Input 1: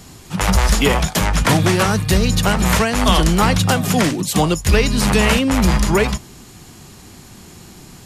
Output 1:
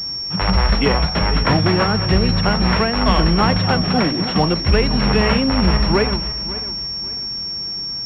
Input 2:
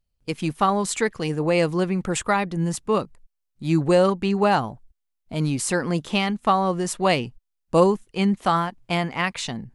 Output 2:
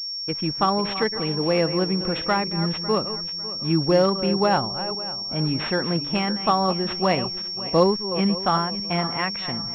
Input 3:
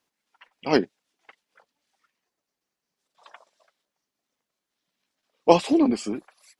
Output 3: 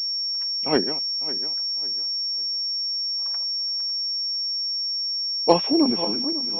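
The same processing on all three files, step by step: regenerating reverse delay 0.275 s, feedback 54%, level -11.5 dB; pulse-width modulation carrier 5500 Hz; gain -1 dB

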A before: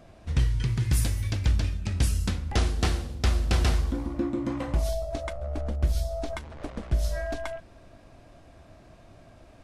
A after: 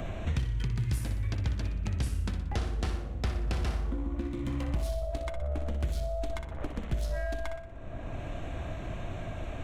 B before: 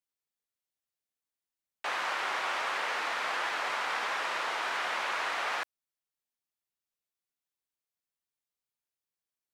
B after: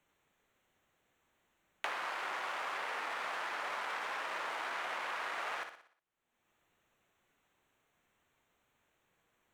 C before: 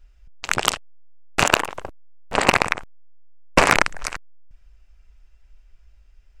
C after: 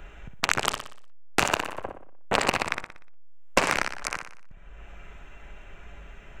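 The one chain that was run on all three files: Wiener smoothing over 9 samples; flutter echo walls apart 10.3 m, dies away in 0.42 s; three-band squash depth 100%; gain -6.5 dB

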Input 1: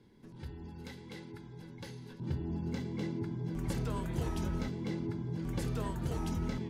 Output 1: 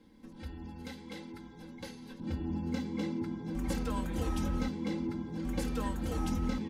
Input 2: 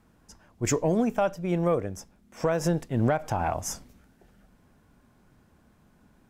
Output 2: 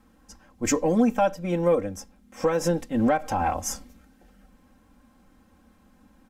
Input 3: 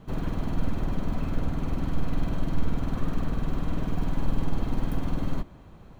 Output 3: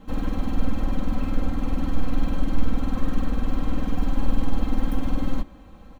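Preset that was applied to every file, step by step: comb 3.8 ms, depth 95%

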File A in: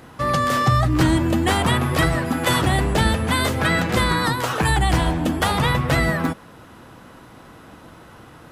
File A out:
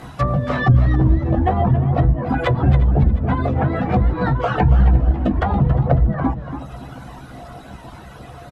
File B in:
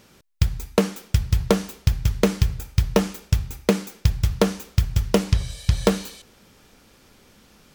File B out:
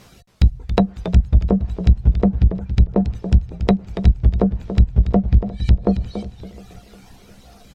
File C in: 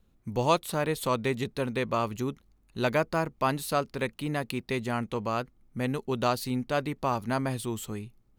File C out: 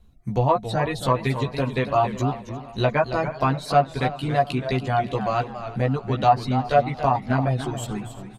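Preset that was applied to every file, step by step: chorus voices 6, 0.31 Hz, delay 15 ms, depth 1.1 ms; reverb removal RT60 1.1 s; low shelf 80 Hz +5.5 dB; in parallel at -1.5 dB: compressor, threshold -28 dBFS; on the sum: one-sided clip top -14 dBFS; treble ducked by the level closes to 340 Hz, closed at -14.5 dBFS; small resonant body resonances 710/3900 Hz, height 12 dB, ringing for 70 ms; on a send: feedback echo 0.355 s, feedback 56%, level -19 dB; on the sum: warbling echo 0.279 s, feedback 32%, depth 142 cents, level -10.5 dB; gain +3.5 dB

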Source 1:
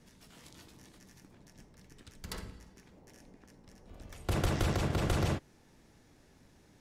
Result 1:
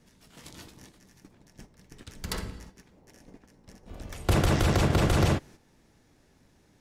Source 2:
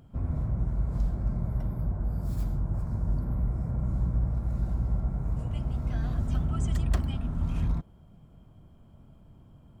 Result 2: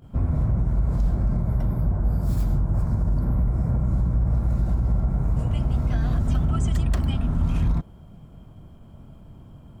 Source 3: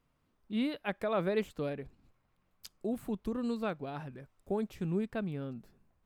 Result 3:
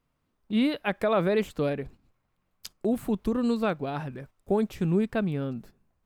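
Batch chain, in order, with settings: gate -55 dBFS, range -9 dB; limiter -23 dBFS; gain +8.5 dB

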